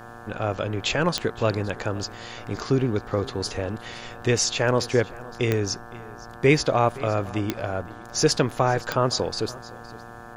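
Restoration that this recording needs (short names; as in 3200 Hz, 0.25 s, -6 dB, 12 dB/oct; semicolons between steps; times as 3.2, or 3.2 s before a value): de-click; de-hum 116.7 Hz, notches 15; notch 740 Hz, Q 30; inverse comb 0.515 s -20 dB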